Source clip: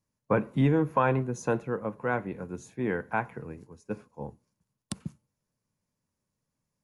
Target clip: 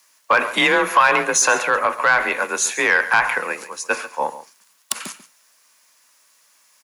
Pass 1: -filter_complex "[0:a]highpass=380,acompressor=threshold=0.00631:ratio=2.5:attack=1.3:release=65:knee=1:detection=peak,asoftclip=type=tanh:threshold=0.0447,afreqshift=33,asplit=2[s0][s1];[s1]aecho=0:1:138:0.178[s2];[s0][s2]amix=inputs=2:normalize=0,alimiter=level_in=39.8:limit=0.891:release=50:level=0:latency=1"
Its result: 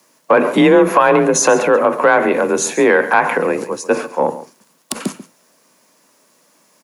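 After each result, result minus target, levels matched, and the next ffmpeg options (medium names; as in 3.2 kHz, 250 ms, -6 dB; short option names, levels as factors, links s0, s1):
saturation: distortion -13 dB; 500 Hz band +7.0 dB
-filter_complex "[0:a]highpass=380,acompressor=threshold=0.00631:ratio=2.5:attack=1.3:release=65:knee=1:detection=peak,asoftclip=type=tanh:threshold=0.0141,afreqshift=33,asplit=2[s0][s1];[s1]aecho=0:1:138:0.178[s2];[s0][s2]amix=inputs=2:normalize=0,alimiter=level_in=39.8:limit=0.891:release=50:level=0:latency=1"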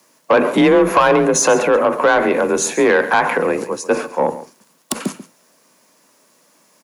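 500 Hz band +7.0 dB
-filter_complex "[0:a]highpass=1300,acompressor=threshold=0.00631:ratio=2.5:attack=1.3:release=65:knee=1:detection=peak,asoftclip=type=tanh:threshold=0.0141,afreqshift=33,asplit=2[s0][s1];[s1]aecho=0:1:138:0.178[s2];[s0][s2]amix=inputs=2:normalize=0,alimiter=level_in=39.8:limit=0.891:release=50:level=0:latency=1"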